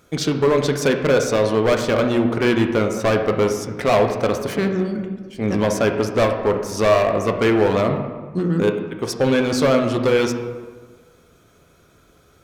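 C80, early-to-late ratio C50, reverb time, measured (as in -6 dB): 8.5 dB, 6.5 dB, 1.4 s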